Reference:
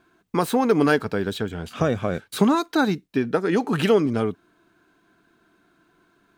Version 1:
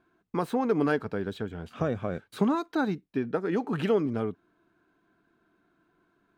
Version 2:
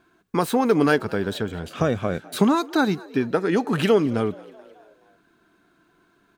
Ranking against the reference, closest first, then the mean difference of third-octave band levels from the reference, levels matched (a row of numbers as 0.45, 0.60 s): 2, 1; 1.0, 3.0 dB